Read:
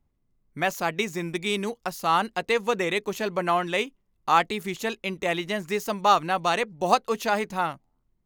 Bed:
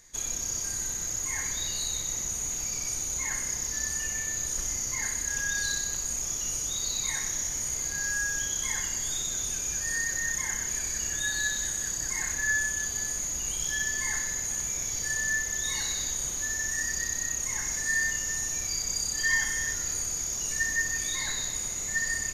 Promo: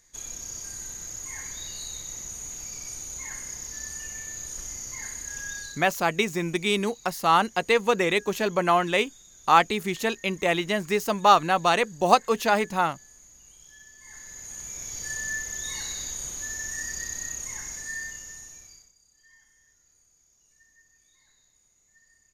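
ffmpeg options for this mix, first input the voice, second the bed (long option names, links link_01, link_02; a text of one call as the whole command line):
ffmpeg -i stem1.wav -i stem2.wav -filter_complex "[0:a]adelay=5200,volume=2.5dB[link_01];[1:a]volume=12.5dB,afade=type=out:start_time=5.51:duration=0.35:silence=0.16788,afade=type=in:start_time=14:duration=1.11:silence=0.125893,afade=type=out:start_time=17.26:duration=1.66:silence=0.0316228[link_02];[link_01][link_02]amix=inputs=2:normalize=0" out.wav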